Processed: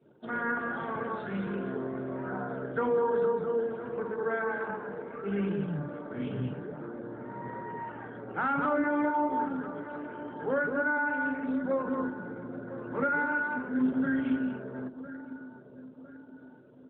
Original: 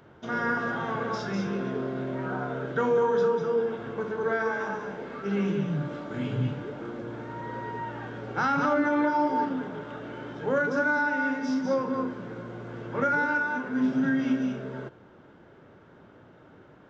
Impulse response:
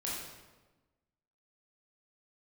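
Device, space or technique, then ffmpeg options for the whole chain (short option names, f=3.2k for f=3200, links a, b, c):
mobile call with aggressive noise cancelling: -filter_complex "[0:a]asplit=3[a][b][c];[a]afade=t=out:st=11.83:d=0.02[d];[b]equalizer=f=200:w=0.7:g=2,afade=t=in:st=11.83:d=0.02,afade=t=out:st=13.93:d=0.02[e];[c]afade=t=in:st=13.93:d=0.02[f];[d][e][f]amix=inputs=3:normalize=0,highpass=140,asplit=2[g][h];[h]adelay=1007,lowpass=f=2k:p=1,volume=-14dB,asplit=2[i][j];[j]adelay=1007,lowpass=f=2k:p=1,volume=0.48,asplit=2[k][l];[l]adelay=1007,lowpass=f=2k:p=1,volume=0.48,asplit=2[m][n];[n]adelay=1007,lowpass=f=2k:p=1,volume=0.48,asplit=2[o][p];[p]adelay=1007,lowpass=f=2k:p=1,volume=0.48[q];[g][i][k][m][o][q]amix=inputs=6:normalize=0,afftdn=nr=21:nf=-50,volume=-3dB" -ar 8000 -c:a libopencore_amrnb -b:a 12200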